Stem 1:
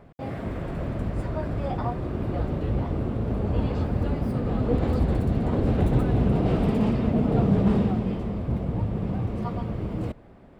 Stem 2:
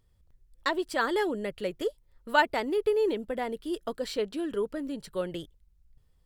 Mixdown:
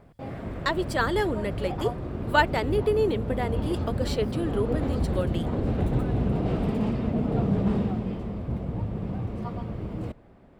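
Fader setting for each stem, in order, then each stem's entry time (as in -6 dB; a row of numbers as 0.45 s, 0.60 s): -3.5 dB, +2.0 dB; 0.00 s, 0.00 s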